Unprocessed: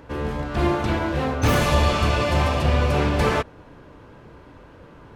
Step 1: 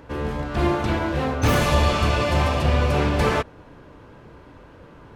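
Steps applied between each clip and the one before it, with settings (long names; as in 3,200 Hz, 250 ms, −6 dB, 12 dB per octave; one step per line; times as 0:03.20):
no processing that can be heard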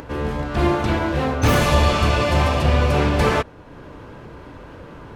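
upward compression, threshold −34 dBFS
level +2.5 dB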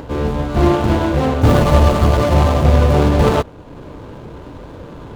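running median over 25 samples
level +6 dB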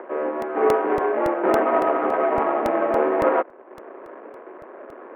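in parallel at −9 dB: bit reduction 5 bits
on the sum: single-sideband voice off tune +85 Hz 230–2,100 Hz
regular buffer underruns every 0.28 s, samples 64, repeat, from 0:00.42
level −6 dB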